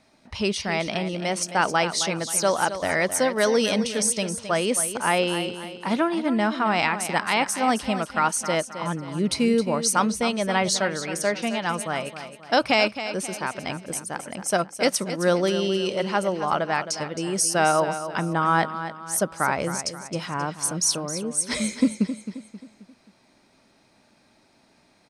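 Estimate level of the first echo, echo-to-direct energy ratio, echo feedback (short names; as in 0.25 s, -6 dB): -11.0 dB, -10.0 dB, 43%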